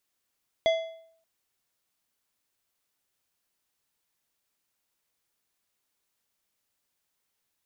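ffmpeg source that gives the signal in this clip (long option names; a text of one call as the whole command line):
ffmpeg -f lavfi -i "aevalsrc='0.141*pow(10,-3*t/0.63)*sin(2*PI*654*t+0.51*clip(1-t/0.57,0,1)*sin(2*PI*4.16*654*t))':duration=0.58:sample_rate=44100" out.wav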